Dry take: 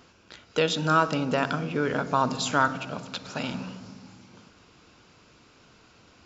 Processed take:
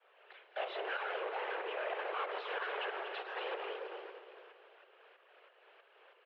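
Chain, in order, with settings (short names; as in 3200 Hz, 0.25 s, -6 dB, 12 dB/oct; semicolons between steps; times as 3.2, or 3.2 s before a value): zero-crossing step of -34 dBFS; tube stage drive 23 dB, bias 0.7; expander -34 dBFS; sample leveller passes 1; overloaded stage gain 35 dB; in parallel at -7.5 dB: bit-crush 8-bit; on the sum: tremolo saw up 3.1 Hz, depth 65%; echo 0.239 s -10.5 dB; limiter -36.5 dBFS, peak gain reduction 5.5 dB; whisperiser; on a send: feedback echo 0.282 s, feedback 58%, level -16 dB; on the sum: mistuned SSB +190 Hz 230–2900 Hz; gain +2 dB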